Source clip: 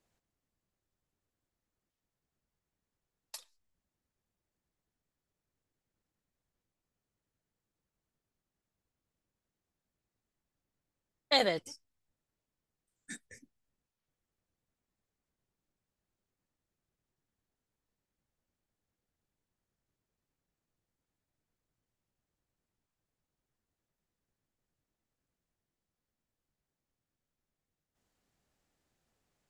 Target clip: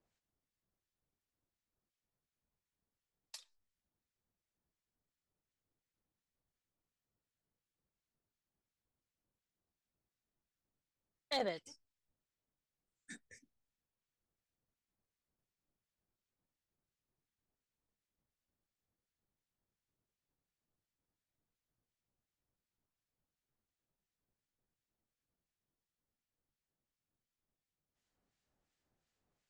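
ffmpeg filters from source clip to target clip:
-filter_complex "[0:a]lowpass=7700,asplit=2[s0][s1];[s1]acompressor=threshold=0.0112:ratio=6,volume=0.75[s2];[s0][s2]amix=inputs=2:normalize=0,acrossover=split=1500[s3][s4];[s3]aeval=exprs='val(0)*(1-0.7/2+0.7/2*cos(2*PI*2.8*n/s))':c=same[s5];[s4]aeval=exprs='val(0)*(1-0.7/2-0.7/2*cos(2*PI*2.8*n/s))':c=same[s6];[s5][s6]amix=inputs=2:normalize=0,asoftclip=type=hard:threshold=0.106,volume=0.447"

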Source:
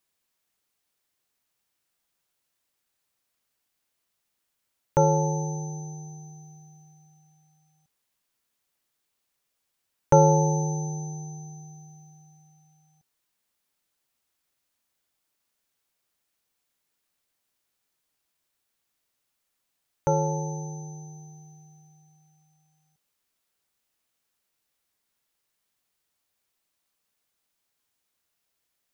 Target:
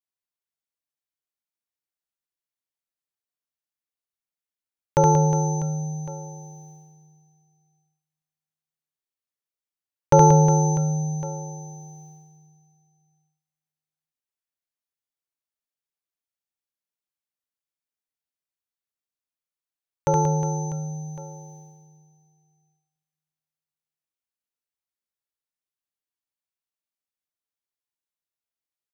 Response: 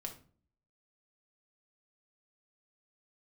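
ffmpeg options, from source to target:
-af "agate=range=0.0891:threshold=0.00282:ratio=16:detection=peak,aecho=1:1:70|182|361.2|647.9|1107:0.631|0.398|0.251|0.158|0.1,volume=1.26"

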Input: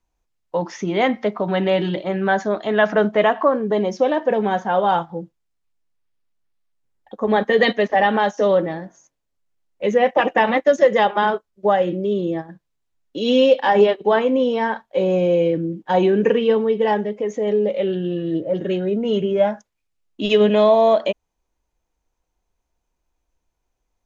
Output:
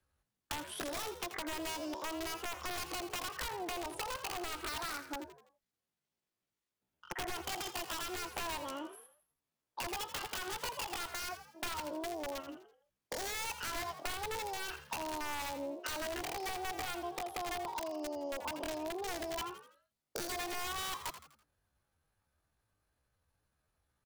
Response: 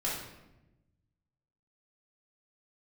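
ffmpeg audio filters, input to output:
-filter_complex "[0:a]highpass=f=47:p=1,asetrate=74167,aresample=44100,atempo=0.594604,acompressor=threshold=0.0282:ratio=4,aeval=exprs='(mod(17.8*val(0)+1,2)-1)/17.8':c=same,acrossover=split=120[s0][s1];[s1]acompressor=threshold=0.0178:ratio=6[s2];[s0][s2]amix=inputs=2:normalize=0,asplit=5[s3][s4][s5][s6][s7];[s4]adelay=83,afreqshift=70,volume=0.266[s8];[s5]adelay=166,afreqshift=140,volume=0.115[s9];[s6]adelay=249,afreqshift=210,volume=0.049[s10];[s7]adelay=332,afreqshift=280,volume=0.0211[s11];[s3][s8][s9][s10][s11]amix=inputs=5:normalize=0,volume=0.75"

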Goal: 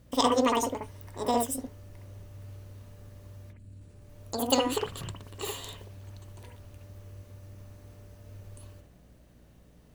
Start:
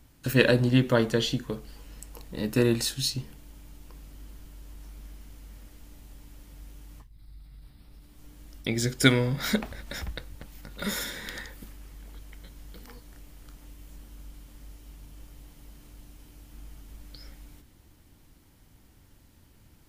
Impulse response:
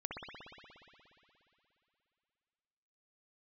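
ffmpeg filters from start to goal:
-filter_complex "[0:a]asetrate=88200,aresample=44100[s0];[1:a]atrim=start_sample=2205,atrim=end_sample=3528[s1];[s0][s1]afir=irnorm=-1:irlink=0,aeval=exprs='val(0)+0.00126*(sin(2*PI*60*n/s)+sin(2*PI*2*60*n/s)/2+sin(2*PI*3*60*n/s)/3+sin(2*PI*4*60*n/s)/4+sin(2*PI*5*60*n/s)/5)':c=same"

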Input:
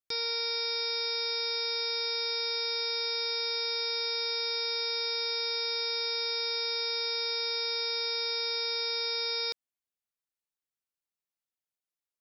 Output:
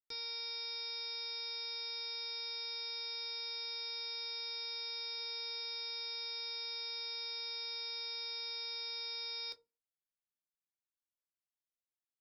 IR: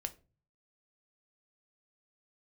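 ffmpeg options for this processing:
-filter_complex "[0:a]asplit=3[s0][s1][s2];[s0]afade=t=out:st=5.18:d=0.02[s3];[s1]lowshelf=f=220:g=9.5,afade=t=in:st=5.18:d=0.02,afade=t=out:st=5.59:d=0.02[s4];[s2]afade=t=in:st=5.59:d=0.02[s5];[s3][s4][s5]amix=inputs=3:normalize=0[s6];[1:a]atrim=start_sample=2205,asetrate=79380,aresample=44100[s7];[s6][s7]afir=irnorm=-1:irlink=0,volume=0.596"

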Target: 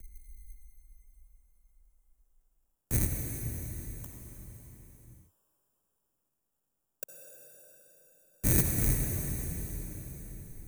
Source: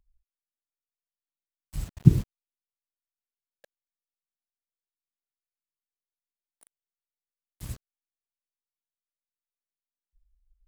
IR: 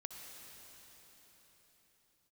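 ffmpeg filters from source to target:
-filter_complex "[0:a]areverse,tiltshelf=f=920:g=9.5,asplit=2[s0][s1];[s1]acompressor=threshold=0.0398:ratio=6,volume=1[s2];[s0][s2]amix=inputs=2:normalize=0,alimiter=limit=0.596:level=0:latency=1:release=166,acrossover=split=120|700[s3][s4][s5];[s3]acompressor=threshold=0.0794:ratio=4[s6];[s4]acompressor=threshold=0.0708:ratio=4[s7];[s5]acompressor=threshold=0.00158:ratio=4[s8];[s6][s7][s8]amix=inputs=3:normalize=0,acrossover=split=390[s9][s10];[s9]asoftclip=type=tanh:threshold=0.0398[s11];[s11][s10]amix=inputs=2:normalize=0,acrusher=samples=21:mix=1:aa=0.000001,aexciter=amount=11.2:drive=3.3:freq=6400[s12];[1:a]atrim=start_sample=2205[s13];[s12][s13]afir=irnorm=-1:irlink=0,volume=2.51"

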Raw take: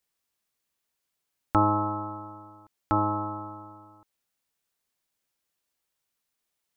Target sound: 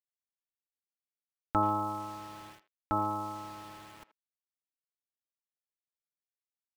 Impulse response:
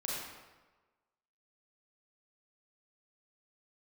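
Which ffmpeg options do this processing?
-filter_complex "[0:a]bandreject=f=1100:w=22,aecho=1:1:4.5:0.32,areverse,acompressor=mode=upward:threshold=0.02:ratio=2.5,areverse,aeval=exprs='val(0)*gte(abs(val(0)),0.00944)':c=same,asplit=2[s0][s1];[s1]adelay=80,highpass=300,lowpass=3400,asoftclip=type=hard:threshold=0.141,volume=0.178[s2];[s0][s2]amix=inputs=2:normalize=0,volume=0.501"

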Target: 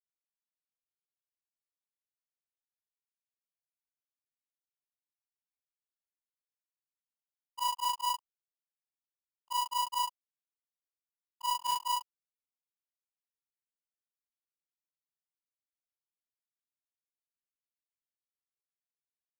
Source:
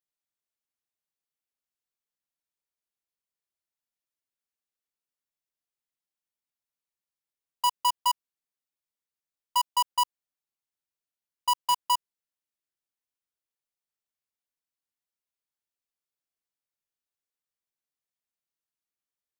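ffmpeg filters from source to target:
-af "afftfilt=real='re':imag='-im':win_size=4096:overlap=0.75,aeval=exprs='sgn(val(0))*max(abs(val(0))-0.00112,0)':c=same"

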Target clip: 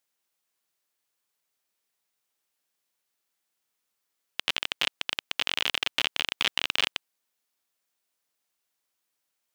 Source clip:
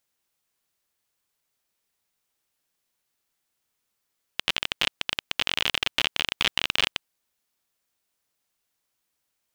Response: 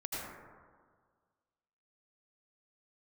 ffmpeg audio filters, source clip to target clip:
-af "highpass=f=250:p=1,volume=0.794"

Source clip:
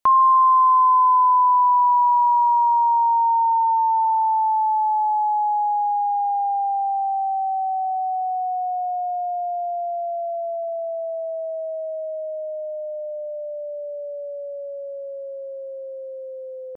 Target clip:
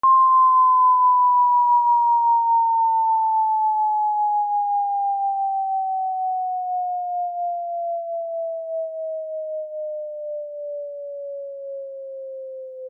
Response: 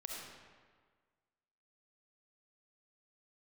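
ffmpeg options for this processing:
-filter_complex "[0:a]atempo=1.3,asplit=2[s0][s1];[1:a]atrim=start_sample=2205,afade=t=out:st=0.2:d=0.01,atrim=end_sample=9261[s2];[s1][s2]afir=irnorm=-1:irlink=0,volume=0.422[s3];[s0][s3]amix=inputs=2:normalize=0,volume=0.794"

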